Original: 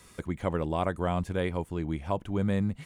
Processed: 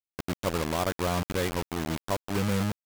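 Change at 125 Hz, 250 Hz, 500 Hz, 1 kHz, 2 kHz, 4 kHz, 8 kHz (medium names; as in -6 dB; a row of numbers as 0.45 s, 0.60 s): -0.5 dB, -0.5 dB, +0.5 dB, +1.5 dB, +5.0 dB, +10.0 dB, +16.5 dB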